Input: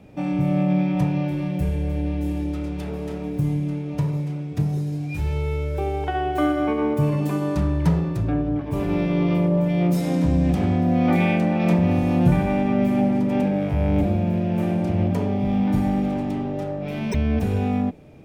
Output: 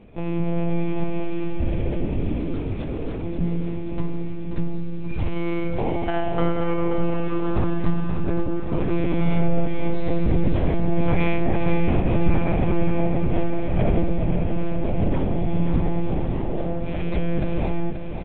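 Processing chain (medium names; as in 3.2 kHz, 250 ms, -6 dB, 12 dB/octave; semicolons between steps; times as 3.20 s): monotone LPC vocoder at 8 kHz 170 Hz; 9.20–9.66 s: comb 7.3 ms, depth 67%; feedback delay 532 ms, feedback 56%, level -8 dB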